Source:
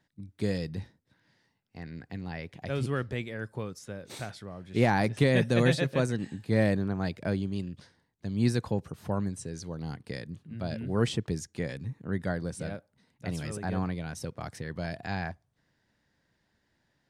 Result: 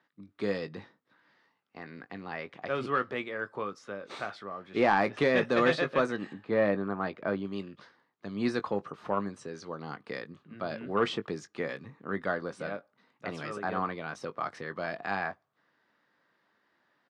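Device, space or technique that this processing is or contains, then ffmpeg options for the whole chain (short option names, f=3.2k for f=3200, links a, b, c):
intercom: -filter_complex "[0:a]highpass=310,lowpass=3.5k,equalizer=f=1.2k:t=o:w=0.39:g=11,asoftclip=type=tanh:threshold=-17dB,asplit=2[a][b];[b]adelay=20,volume=-11.5dB[c];[a][c]amix=inputs=2:normalize=0,asettb=1/sr,asplit=3[d][e][f];[d]atrim=end=6.334[g];[e]atrim=start=6.33:end=7.45,asetpts=PTS-STARTPTS,afade=t=in:d=0.004:c=qsin,afade=t=out:st=1.116:d=0.004:c=qsin,aemphasis=mode=reproduction:type=75kf[h];[f]atrim=start=7.446[i];[g][h]acrossfade=d=0.004:c1=hsin:c2=qsin[j];[j][i]acrossfade=d=0.004:c1=qsin:c2=hsin,volume=2.5dB"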